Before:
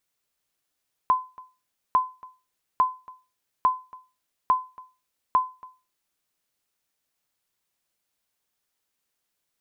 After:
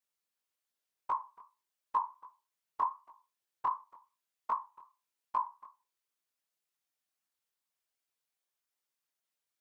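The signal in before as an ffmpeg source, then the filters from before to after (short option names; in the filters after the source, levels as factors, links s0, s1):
-f lavfi -i "aevalsrc='0.251*(sin(2*PI*1020*mod(t,0.85))*exp(-6.91*mod(t,0.85)/0.3)+0.0708*sin(2*PI*1020*max(mod(t,0.85)-0.28,0))*exp(-6.91*max(mod(t,0.85)-0.28,0)/0.3))':d=5.1:s=44100"
-af "lowshelf=f=220:g=-10,afftfilt=real='hypot(re,im)*cos(2*PI*random(0))':imag='hypot(re,im)*sin(2*PI*random(1))':win_size=512:overlap=0.75,flanger=delay=17.5:depth=6.2:speed=2.6"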